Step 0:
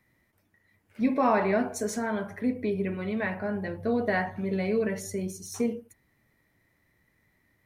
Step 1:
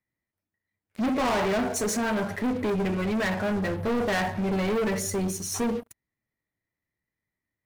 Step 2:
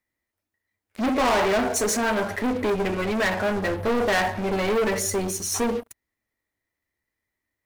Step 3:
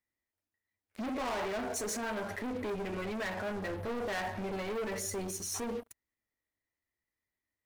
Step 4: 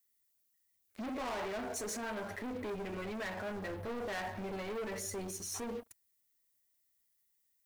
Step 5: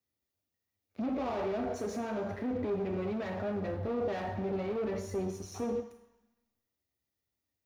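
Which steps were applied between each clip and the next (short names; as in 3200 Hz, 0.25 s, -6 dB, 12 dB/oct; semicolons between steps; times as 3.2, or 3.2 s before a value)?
sample leveller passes 5; gain -9 dB
bell 150 Hz -12 dB 0.91 oct; gain +5 dB
limiter -21.5 dBFS, peak gain reduction 7 dB; gain -8.5 dB
added noise violet -73 dBFS; gain -3.5 dB
reverb RT60 1.0 s, pre-delay 3 ms, DRR 7 dB; gain -8.5 dB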